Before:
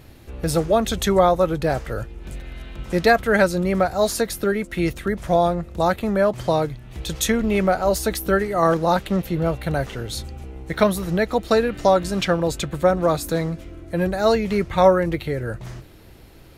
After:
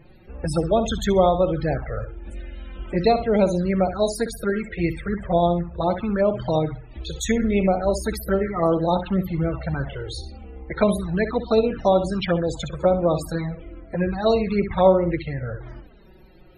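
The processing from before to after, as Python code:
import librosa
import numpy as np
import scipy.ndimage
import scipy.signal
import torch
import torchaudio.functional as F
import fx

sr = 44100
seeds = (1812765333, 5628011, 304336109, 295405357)

p1 = x + fx.room_flutter(x, sr, wall_m=10.9, rt60_s=0.4, dry=0)
p2 = fx.env_lowpass(p1, sr, base_hz=2800.0, full_db=-14.0, at=(10.62, 12.15))
p3 = fx.env_flanger(p2, sr, rest_ms=6.2, full_db=-14.5)
y = fx.spec_topn(p3, sr, count=64)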